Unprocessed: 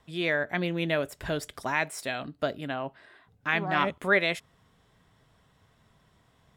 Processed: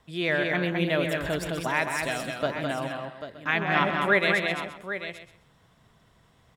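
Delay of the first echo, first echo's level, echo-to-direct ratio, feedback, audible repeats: 130 ms, −10.0 dB, −2.5 dB, repeats not evenly spaced, 8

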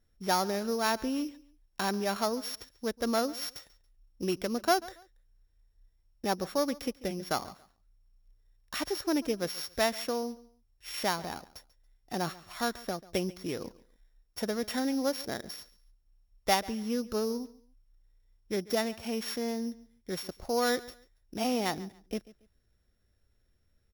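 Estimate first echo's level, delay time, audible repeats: −20.0 dB, 140 ms, 2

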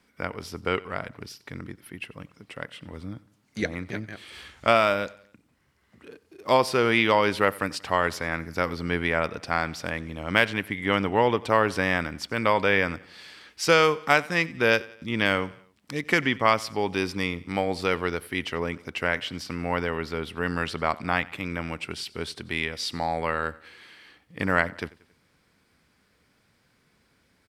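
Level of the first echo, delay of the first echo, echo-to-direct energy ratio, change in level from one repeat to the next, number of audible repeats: −21.5 dB, 91 ms, −20.5 dB, −6.0 dB, 3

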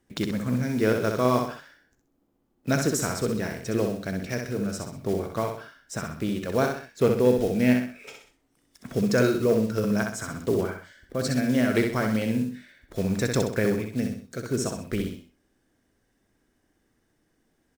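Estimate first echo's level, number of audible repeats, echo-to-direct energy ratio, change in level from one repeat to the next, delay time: −5.0 dB, 3, −4.5 dB, −8.0 dB, 64 ms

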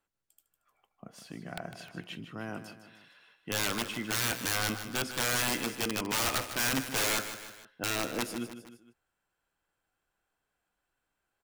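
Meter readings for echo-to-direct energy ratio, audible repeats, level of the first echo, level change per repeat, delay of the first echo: −10.0 dB, 3, −11.0 dB, −6.0 dB, 154 ms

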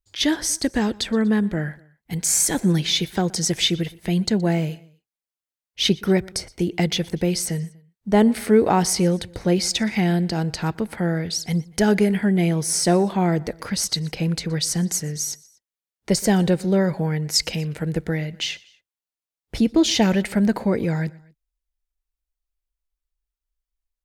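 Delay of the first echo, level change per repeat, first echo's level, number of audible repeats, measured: 121 ms, −5.0 dB, −23.5 dB, 2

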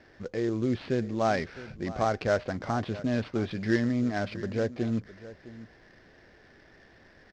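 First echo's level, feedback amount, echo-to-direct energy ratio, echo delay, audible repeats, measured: −16.5 dB, repeats not evenly spaced, −16.5 dB, 660 ms, 1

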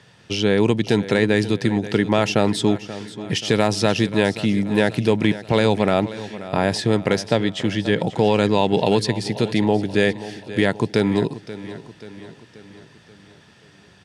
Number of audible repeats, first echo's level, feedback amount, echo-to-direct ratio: 4, −15.0 dB, 52%, −13.5 dB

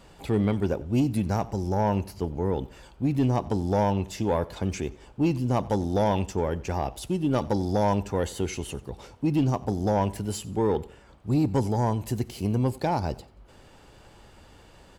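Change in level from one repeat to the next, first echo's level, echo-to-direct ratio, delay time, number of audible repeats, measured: −9.0 dB, −21.5 dB, −21.0 dB, 90 ms, 2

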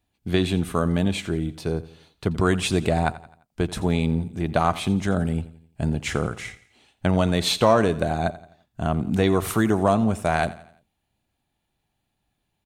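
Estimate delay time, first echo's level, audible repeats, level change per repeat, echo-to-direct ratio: 86 ms, −17.5 dB, 3, −7.0 dB, −16.5 dB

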